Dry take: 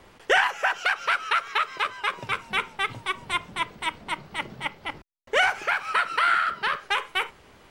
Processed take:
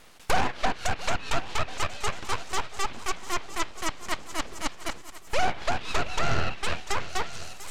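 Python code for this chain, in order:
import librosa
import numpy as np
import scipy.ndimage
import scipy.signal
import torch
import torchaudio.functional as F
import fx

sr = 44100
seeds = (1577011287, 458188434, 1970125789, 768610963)

p1 = fx.tracing_dist(x, sr, depth_ms=0.41)
p2 = np.abs(p1)
p3 = fx.high_shelf(p2, sr, hz=4800.0, db=8.5)
p4 = p3 + fx.echo_heads(p3, sr, ms=346, heads='second and third', feedback_pct=48, wet_db=-18.0, dry=0)
y = fx.env_lowpass_down(p4, sr, base_hz=2200.0, full_db=-17.5)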